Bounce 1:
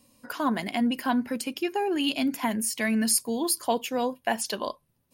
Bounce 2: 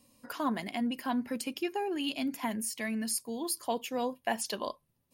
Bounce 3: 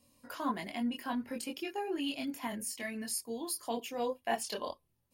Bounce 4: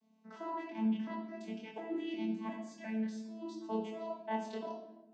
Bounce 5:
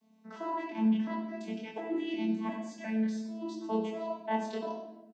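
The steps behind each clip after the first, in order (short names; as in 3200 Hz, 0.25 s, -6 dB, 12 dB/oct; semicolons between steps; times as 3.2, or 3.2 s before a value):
notch 1500 Hz, Q 19; vocal rider within 4 dB 0.5 s; gain -6.5 dB
chorus voices 6, 0.48 Hz, delay 23 ms, depth 1.9 ms
arpeggiated vocoder bare fifth, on A3, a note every 0.355 s; shoebox room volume 420 m³, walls mixed, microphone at 1.5 m; gain -5.5 dB
echo 96 ms -14 dB; gain +5 dB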